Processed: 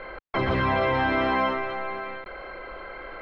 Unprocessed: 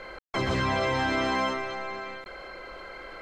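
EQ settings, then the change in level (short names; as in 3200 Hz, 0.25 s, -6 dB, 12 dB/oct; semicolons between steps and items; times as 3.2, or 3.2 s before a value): air absorption 370 m; bell 150 Hz -4 dB 2.8 oct; +6.0 dB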